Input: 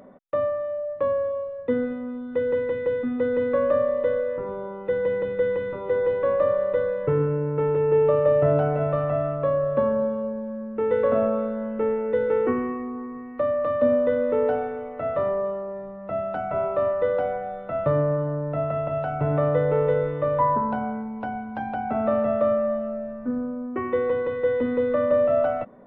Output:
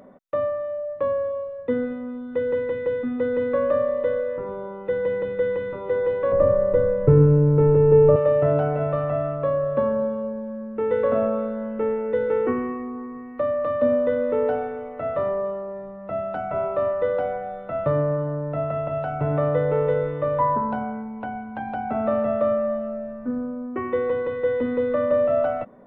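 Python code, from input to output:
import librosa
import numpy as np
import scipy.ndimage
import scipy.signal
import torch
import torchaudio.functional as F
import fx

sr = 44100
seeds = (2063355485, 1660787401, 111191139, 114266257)

y = fx.tilt_eq(x, sr, slope=-4.0, at=(6.32, 8.16))
y = fx.cheby1_lowpass(y, sr, hz=3000.0, order=2, at=(20.83, 21.68))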